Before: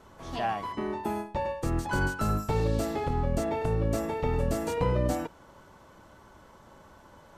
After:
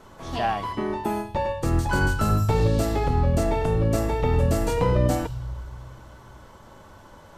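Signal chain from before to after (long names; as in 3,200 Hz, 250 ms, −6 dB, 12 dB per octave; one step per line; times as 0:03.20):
on a send: elliptic band-stop filter 120–3,100 Hz + convolution reverb RT60 1.2 s, pre-delay 3 ms, DRR 18.5 dB
on the sum: level +5 dB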